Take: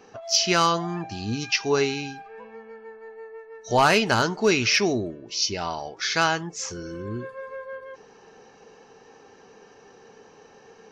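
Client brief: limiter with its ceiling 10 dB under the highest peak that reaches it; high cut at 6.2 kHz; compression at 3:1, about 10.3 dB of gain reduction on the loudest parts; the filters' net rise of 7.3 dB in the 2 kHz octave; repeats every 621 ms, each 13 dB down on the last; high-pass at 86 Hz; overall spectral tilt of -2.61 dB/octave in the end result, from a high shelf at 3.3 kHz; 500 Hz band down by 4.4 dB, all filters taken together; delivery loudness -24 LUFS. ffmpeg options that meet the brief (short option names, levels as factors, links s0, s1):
-af "highpass=86,lowpass=6200,equalizer=f=500:t=o:g=-6.5,equalizer=f=2000:t=o:g=7.5,highshelf=f=3300:g=8,acompressor=threshold=0.0562:ratio=3,alimiter=limit=0.106:level=0:latency=1,aecho=1:1:621|1242|1863:0.224|0.0493|0.0108,volume=2.37"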